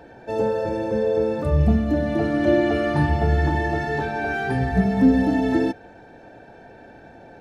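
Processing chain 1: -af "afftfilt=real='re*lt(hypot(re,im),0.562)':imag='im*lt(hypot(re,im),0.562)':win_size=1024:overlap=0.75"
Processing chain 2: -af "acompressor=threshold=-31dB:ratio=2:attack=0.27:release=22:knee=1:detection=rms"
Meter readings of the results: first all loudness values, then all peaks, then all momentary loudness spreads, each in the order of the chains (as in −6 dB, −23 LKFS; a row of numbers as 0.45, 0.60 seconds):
−26.0, −29.5 LKFS; −12.5, −18.5 dBFS; 21, 18 LU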